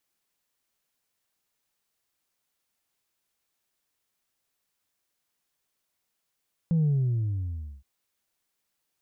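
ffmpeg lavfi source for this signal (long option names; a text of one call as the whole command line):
ffmpeg -f lavfi -i "aevalsrc='0.0944*clip((1.12-t)/0.99,0,1)*tanh(1.12*sin(2*PI*170*1.12/log(65/170)*(exp(log(65/170)*t/1.12)-1)))/tanh(1.12)':duration=1.12:sample_rate=44100" out.wav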